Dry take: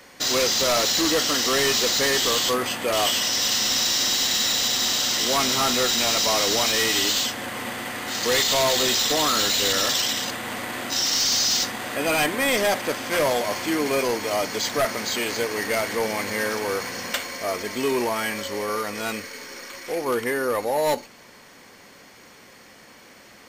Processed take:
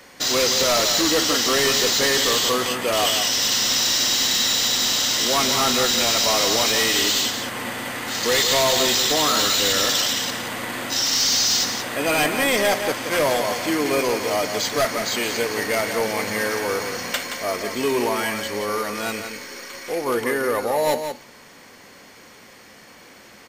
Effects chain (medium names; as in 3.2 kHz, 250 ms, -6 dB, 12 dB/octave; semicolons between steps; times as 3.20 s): delay 174 ms -8 dB; trim +1.5 dB